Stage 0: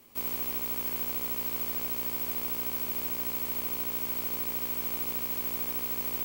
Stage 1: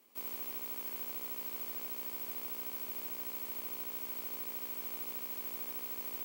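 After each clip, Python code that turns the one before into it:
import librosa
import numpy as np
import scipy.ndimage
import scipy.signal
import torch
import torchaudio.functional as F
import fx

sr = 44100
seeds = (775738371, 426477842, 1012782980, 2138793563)

y = scipy.signal.sosfilt(scipy.signal.butter(2, 250.0, 'highpass', fs=sr, output='sos'), x)
y = F.gain(torch.from_numpy(y), -8.5).numpy()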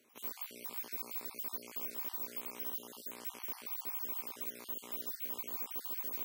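y = fx.spec_dropout(x, sr, seeds[0], share_pct=42)
y = F.gain(torch.from_numpy(y), 1.5).numpy()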